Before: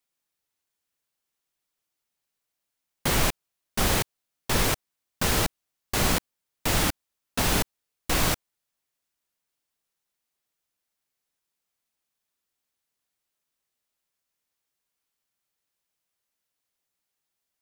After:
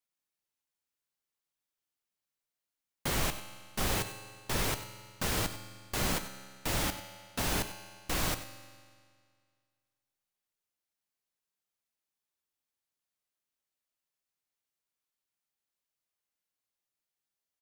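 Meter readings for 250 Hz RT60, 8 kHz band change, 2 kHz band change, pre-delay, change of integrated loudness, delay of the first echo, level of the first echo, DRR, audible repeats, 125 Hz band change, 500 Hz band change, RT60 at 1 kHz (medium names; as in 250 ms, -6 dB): 2.0 s, -7.5 dB, -7.5 dB, 3 ms, -7.5 dB, 96 ms, -14.0 dB, 8.5 dB, 1, -7.5 dB, -7.5 dB, 2.0 s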